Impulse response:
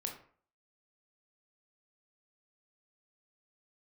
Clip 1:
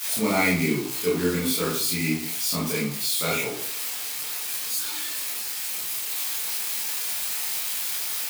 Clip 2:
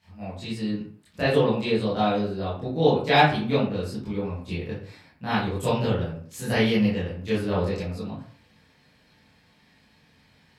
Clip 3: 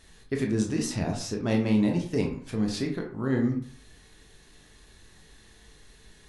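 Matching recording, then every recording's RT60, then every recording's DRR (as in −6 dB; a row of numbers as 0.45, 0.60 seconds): 3; 0.50, 0.50, 0.50 seconds; −6.5, −11.5, 1.5 decibels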